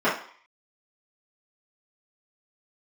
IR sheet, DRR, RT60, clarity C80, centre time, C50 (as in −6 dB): −12.0 dB, 0.50 s, 11.5 dB, 34 ms, 6.0 dB